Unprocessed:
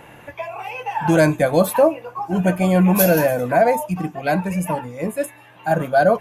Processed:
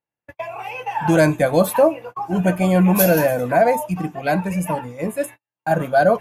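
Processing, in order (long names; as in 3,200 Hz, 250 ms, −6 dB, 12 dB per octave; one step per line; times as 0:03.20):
noise gate −33 dBFS, range −48 dB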